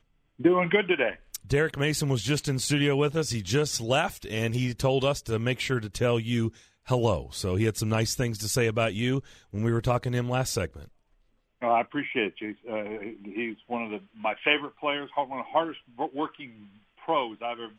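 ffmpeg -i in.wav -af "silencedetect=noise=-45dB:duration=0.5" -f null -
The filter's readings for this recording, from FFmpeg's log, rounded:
silence_start: 10.88
silence_end: 11.61 | silence_duration: 0.74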